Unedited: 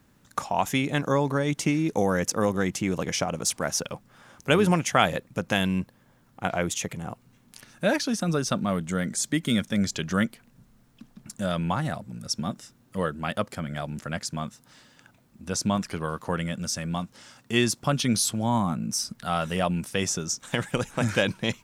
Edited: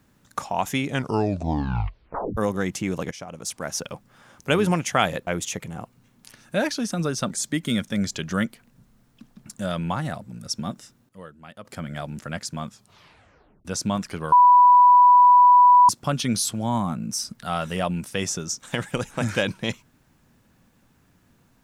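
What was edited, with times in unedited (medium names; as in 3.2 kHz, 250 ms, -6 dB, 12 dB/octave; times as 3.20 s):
0.85 s: tape stop 1.52 s
3.11–3.94 s: fade in, from -15 dB
5.27–6.56 s: delete
8.60–9.11 s: delete
12.54–13.80 s: dip -14.5 dB, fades 0.35 s logarithmic
14.47 s: tape stop 0.98 s
16.12–17.69 s: bleep 986 Hz -9.5 dBFS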